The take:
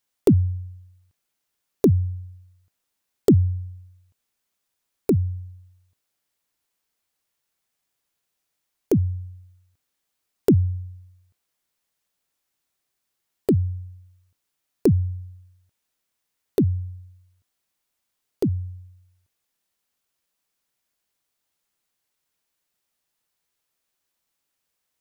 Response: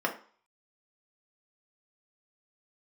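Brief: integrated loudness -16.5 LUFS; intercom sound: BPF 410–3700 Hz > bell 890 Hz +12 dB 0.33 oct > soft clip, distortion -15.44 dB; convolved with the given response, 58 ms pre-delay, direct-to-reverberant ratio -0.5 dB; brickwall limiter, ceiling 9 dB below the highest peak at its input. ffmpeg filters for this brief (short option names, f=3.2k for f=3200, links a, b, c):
-filter_complex "[0:a]alimiter=limit=-14dB:level=0:latency=1,asplit=2[a][b];[1:a]atrim=start_sample=2205,adelay=58[c];[b][c]afir=irnorm=-1:irlink=0,volume=-9dB[d];[a][d]amix=inputs=2:normalize=0,highpass=410,lowpass=3.7k,equalizer=f=890:t=o:w=0.33:g=12,asoftclip=threshold=-22dB,volume=18dB"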